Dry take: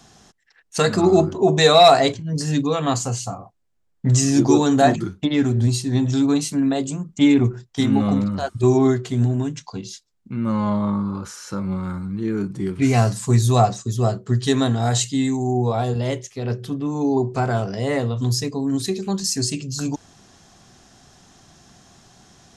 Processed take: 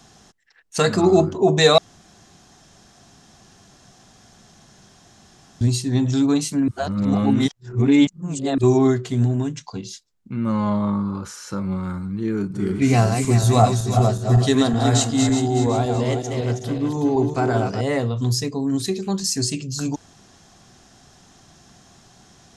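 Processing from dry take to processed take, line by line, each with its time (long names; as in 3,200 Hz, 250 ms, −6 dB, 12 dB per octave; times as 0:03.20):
0:01.78–0:05.61: fill with room tone
0:06.68–0:08.58: reverse
0:12.32–0:17.81: feedback delay that plays each chunk backwards 186 ms, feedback 62%, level −5.5 dB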